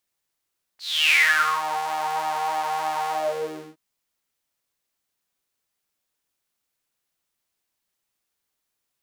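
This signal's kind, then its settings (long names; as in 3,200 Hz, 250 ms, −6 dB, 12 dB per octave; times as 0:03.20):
subtractive patch with pulse-width modulation D#3, noise −28.5 dB, filter highpass, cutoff 280 Hz, Q 11, filter envelope 4 octaves, filter decay 0.88 s, attack 318 ms, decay 0.49 s, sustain −12 dB, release 0.67 s, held 2.30 s, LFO 3.2 Hz, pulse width 41%, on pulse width 11%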